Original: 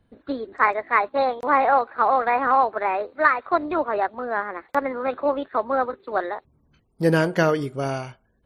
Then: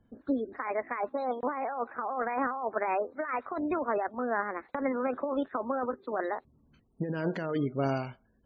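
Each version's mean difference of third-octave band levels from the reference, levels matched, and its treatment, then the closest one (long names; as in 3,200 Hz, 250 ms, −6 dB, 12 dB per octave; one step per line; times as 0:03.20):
5.5 dB: compressor whose output falls as the input rises −24 dBFS, ratio −1
high-shelf EQ 4,500 Hz −3 dB
gate on every frequency bin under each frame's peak −30 dB strong
parametric band 240 Hz +6 dB 0.56 octaves
level −7 dB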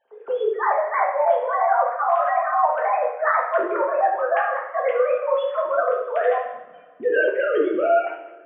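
10.0 dB: three sine waves on the formant tracks
low-pass filter 2,700 Hz 6 dB per octave
reversed playback
downward compressor, threshold −27 dBFS, peak gain reduction 13.5 dB
reversed playback
coupled-rooms reverb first 0.68 s, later 2.1 s, from −17 dB, DRR −3 dB
level +5 dB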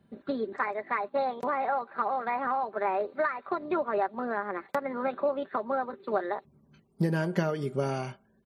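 3.0 dB: downward compressor 6 to 1, threshold −27 dBFS, peak gain reduction 15 dB
high-pass filter 140 Hz 12 dB per octave
low-shelf EQ 290 Hz +8.5 dB
comb filter 5.1 ms, depth 48%
level −1.5 dB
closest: third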